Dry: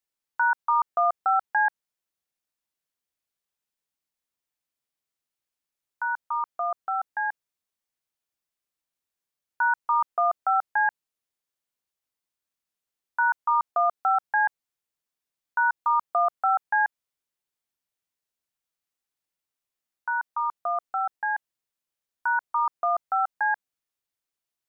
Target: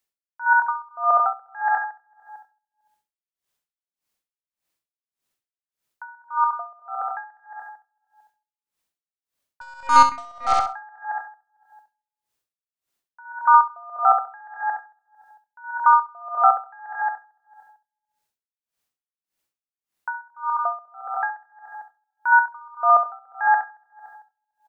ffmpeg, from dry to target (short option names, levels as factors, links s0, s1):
-filter_complex "[0:a]asplit=2[s0][s1];[s1]adelay=225,lowpass=f=1400:p=1,volume=0.501,asplit=2[s2][s3];[s3]adelay=225,lowpass=f=1400:p=1,volume=0.44,asplit=2[s4][s5];[s5]adelay=225,lowpass=f=1400:p=1,volume=0.44,asplit=2[s6][s7];[s7]adelay=225,lowpass=f=1400:p=1,volume=0.44,asplit=2[s8][s9];[s9]adelay=225,lowpass=f=1400:p=1,volume=0.44[s10];[s2][s4][s6][s8][s10]amix=inputs=5:normalize=0[s11];[s0][s11]amix=inputs=2:normalize=0,asettb=1/sr,asplit=3[s12][s13][s14];[s12]atrim=end=9.614[s15];[s13]atrim=start=9.61:end=10.53,asetpts=PTS-STARTPTS,afade=t=in:d=0.004:c=qsin,afade=t=out:st=0.916:d=0.004:c=qsin,aeval=exprs='0.237*(cos(1*acos(clip(val(0)/0.237,-1,1)))-cos(1*PI/2))+0.00596*(cos(4*acos(clip(val(0)/0.237,-1,1)))-cos(4*PI/2))+0.0211*(cos(8*acos(clip(val(0)/0.237,-1,1)))-cos(8*PI/2))':c=same[s16];[s14]atrim=start=10.526[s17];[s15][s16]acrossfade=d=0.004:c1=hsin:c2=qsin[s18];[s18][s17]acrossfade=d=0.004:c1=qsin:c2=hsin,asplit=2[s19][s20];[s20]aecho=0:1:67|134|201|268|335:0.596|0.256|0.11|0.0474|0.0204[s21];[s19][s21]amix=inputs=2:normalize=0,aeval=exprs='val(0)*pow(10,-31*(0.5-0.5*cos(2*PI*1.7*n/s))/20)':c=same,volume=2.37"